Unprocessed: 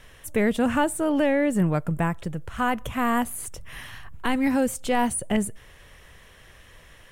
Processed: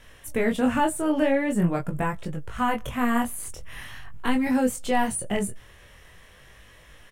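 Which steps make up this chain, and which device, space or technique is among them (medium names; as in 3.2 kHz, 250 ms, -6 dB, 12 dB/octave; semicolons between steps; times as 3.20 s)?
double-tracked vocal (doubling 16 ms -13 dB; chorus 0.44 Hz, delay 19.5 ms, depth 6.8 ms); trim +2 dB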